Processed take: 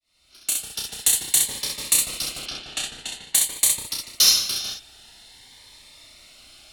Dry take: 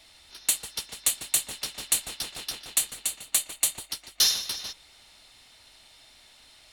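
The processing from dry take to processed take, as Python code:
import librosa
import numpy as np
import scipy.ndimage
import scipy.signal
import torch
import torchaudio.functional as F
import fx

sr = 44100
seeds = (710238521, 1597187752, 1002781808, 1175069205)

y = fx.fade_in_head(x, sr, length_s=0.97)
y = fx.lowpass(y, sr, hz=4300.0, slope=12, at=(2.39, 3.35))
y = fx.room_early_taps(y, sr, ms=(31, 65), db=(-4.5, -3.5))
y = fx.notch_cascade(y, sr, direction='rising', hz=0.49)
y = F.gain(torch.from_numpy(y), 4.5).numpy()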